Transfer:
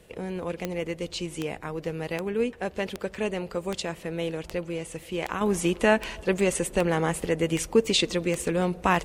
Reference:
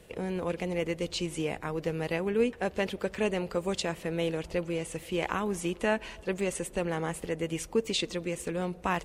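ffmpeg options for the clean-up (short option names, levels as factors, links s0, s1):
-af "adeclick=t=4,asetnsamples=n=441:p=0,asendcmd='5.41 volume volume -7dB',volume=1"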